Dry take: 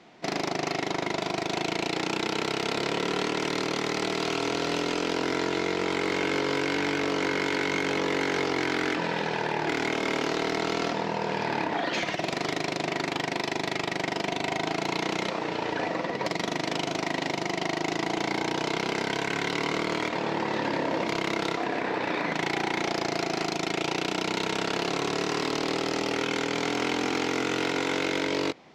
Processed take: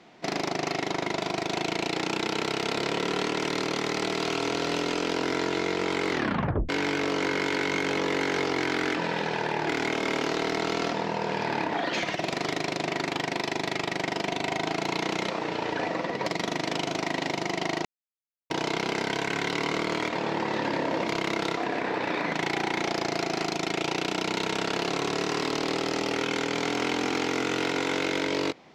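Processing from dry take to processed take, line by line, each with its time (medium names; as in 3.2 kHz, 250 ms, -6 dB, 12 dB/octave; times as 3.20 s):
6.10 s: tape stop 0.59 s
17.85–18.50 s: mute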